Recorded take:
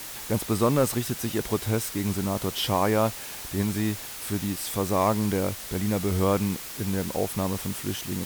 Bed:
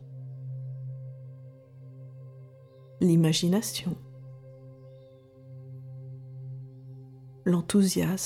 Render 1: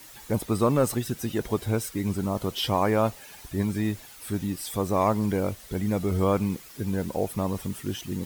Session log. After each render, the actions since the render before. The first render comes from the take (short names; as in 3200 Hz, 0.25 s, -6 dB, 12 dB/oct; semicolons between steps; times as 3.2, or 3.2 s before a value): denoiser 11 dB, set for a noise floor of -38 dBFS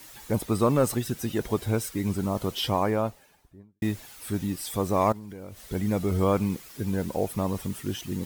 2.52–3.82 studio fade out; 5.12–5.64 compressor 12:1, threshold -36 dBFS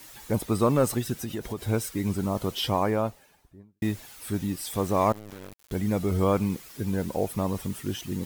1.16–1.68 compressor 4:1, threshold -28 dBFS; 4.72–5.72 sample gate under -38 dBFS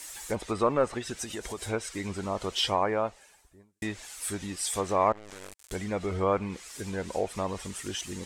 treble ducked by the level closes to 2100 Hz, closed at -19.5 dBFS; graphic EQ 125/250/2000/8000 Hz -12/-6/+3/+11 dB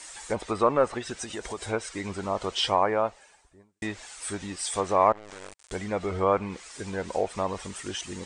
elliptic low-pass 9200 Hz, stop band 40 dB; bell 880 Hz +5 dB 2.4 oct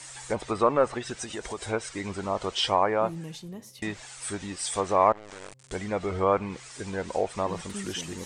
add bed -16 dB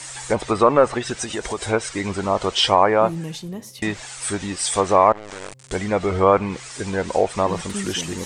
gain +8.5 dB; limiter -2 dBFS, peak gain reduction 3 dB